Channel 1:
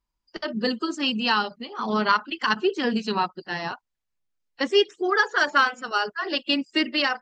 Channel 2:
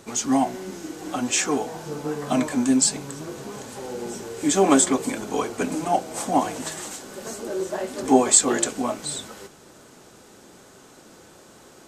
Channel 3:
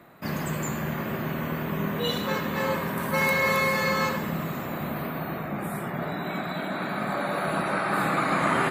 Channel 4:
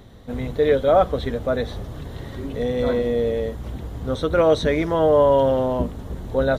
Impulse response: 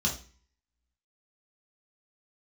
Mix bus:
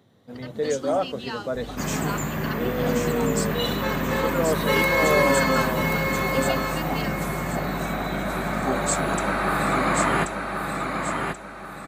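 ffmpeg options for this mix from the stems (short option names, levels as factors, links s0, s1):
-filter_complex "[0:a]volume=0.237[s0];[1:a]adelay=550,volume=0.266,asplit=2[s1][s2];[s2]volume=0.631[s3];[2:a]aeval=exprs='val(0)+0.01*(sin(2*PI*50*n/s)+sin(2*PI*2*50*n/s)/2+sin(2*PI*3*50*n/s)/3+sin(2*PI*4*50*n/s)/4+sin(2*PI*5*50*n/s)/5)':c=same,adelay=1550,volume=1.19,asplit=2[s4][s5];[s5]volume=0.562[s6];[3:a]highpass=f=110:w=0.5412,highpass=f=110:w=1.3066,dynaudnorm=f=140:g=5:m=2.11,volume=0.266[s7];[s3][s6]amix=inputs=2:normalize=0,aecho=0:1:1082|2164|3246|4328|5410:1|0.35|0.122|0.0429|0.015[s8];[s0][s1][s4][s7][s8]amix=inputs=5:normalize=0"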